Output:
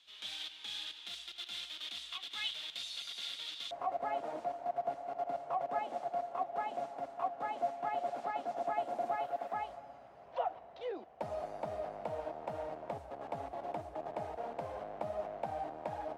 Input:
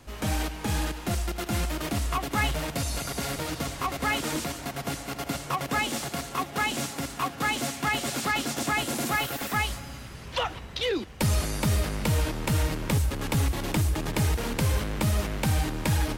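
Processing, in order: band-pass 3500 Hz, Q 7.5, from 3.71 s 690 Hz; gain +4.5 dB

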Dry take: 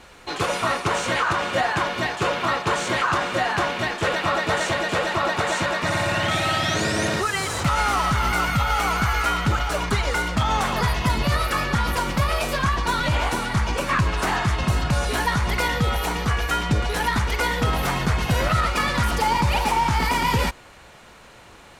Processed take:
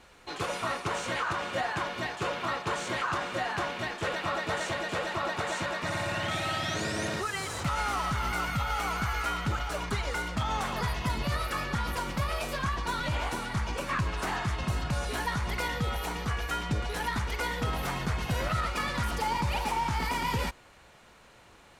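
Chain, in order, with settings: gain -9 dB

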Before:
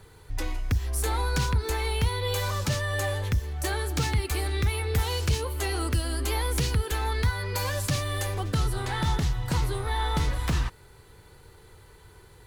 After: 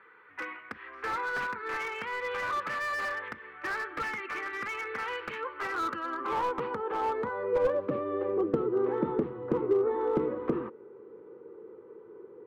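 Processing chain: band-pass sweep 1800 Hz -> 410 Hz, 5.38–8.07; speaker cabinet 180–2500 Hz, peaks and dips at 220 Hz +9 dB, 330 Hz +6 dB, 490 Hz +7 dB, 700 Hz -8 dB, 1200 Hz +8 dB, 1800 Hz -3 dB; slew limiter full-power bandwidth 19 Hz; gain +7.5 dB

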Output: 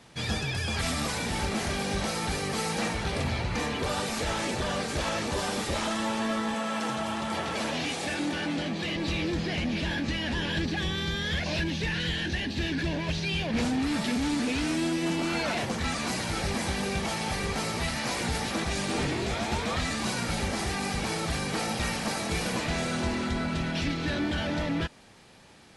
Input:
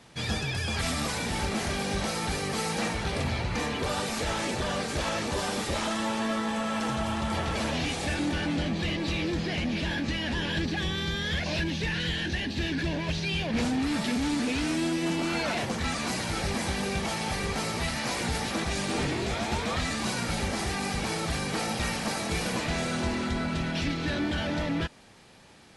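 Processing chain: 6.54–8.96 Bessel high-pass 190 Hz, order 2

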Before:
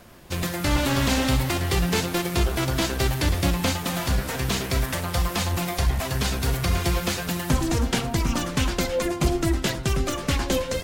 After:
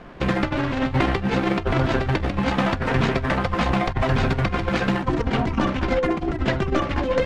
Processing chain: LPF 2200 Hz 12 dB/oct; bell 100 Hz -14 dB 0.3 oct; negative-ratio compressor -26 dBFS, ratio -0.5; granular stretch 0.67×, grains 31 ms; gain +7 dB

